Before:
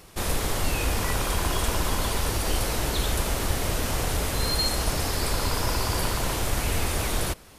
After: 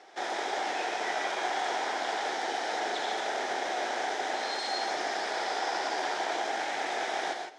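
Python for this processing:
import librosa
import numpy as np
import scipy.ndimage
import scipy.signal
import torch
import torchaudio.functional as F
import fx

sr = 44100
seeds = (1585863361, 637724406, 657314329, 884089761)

y = 10.0 ** (-23.0 / 20.0) * (np.abs((x / 10.0 ** (-23.0 / 20.0) + 3.0) % 4.0 - 2.0) - 1.0)
y = fx.cabinet(y, sr, low_hz=370.0, low_slope=24, high_hz=5200.0, hz=(510.0, 770.0, 1100.0, 1700.0, 2700.0, 4400.0), db=(-6, 10, -10, 4, -9, -8))
y = fx.rev_gated(y, sr, seeds[0], gate_ms=180, shape='rising', drr_db=3.0)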